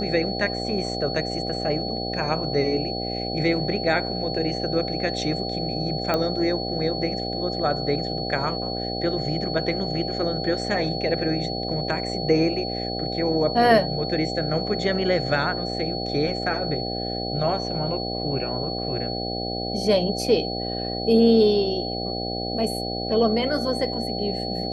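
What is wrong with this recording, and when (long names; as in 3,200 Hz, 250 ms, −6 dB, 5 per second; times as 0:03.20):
mains buzz 60 Hz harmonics 13 −30 dBFS
whistle 4,400 Hz −31 dBFS
0:06.14: click −10 dBFS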